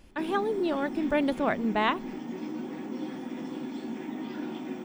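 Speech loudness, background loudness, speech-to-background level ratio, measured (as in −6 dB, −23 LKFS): −28.5 LKFS, −37.0 LKFS, 8.5 dB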